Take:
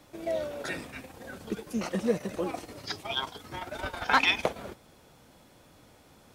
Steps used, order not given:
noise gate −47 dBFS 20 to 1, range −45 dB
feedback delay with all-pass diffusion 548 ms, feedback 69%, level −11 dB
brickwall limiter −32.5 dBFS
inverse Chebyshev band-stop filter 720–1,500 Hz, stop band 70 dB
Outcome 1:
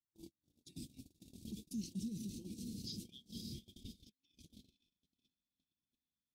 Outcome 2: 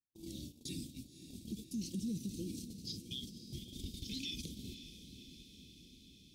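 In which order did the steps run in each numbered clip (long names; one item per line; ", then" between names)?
feedback delay with all-pass diffusion, then brickwall limiter, then inverse Chebyshev band-stop filter, then noise gate
inverse Chebyshev band-stop filter, then brickwall limiter, then noise gate, then feedback delay with all-pass diffusion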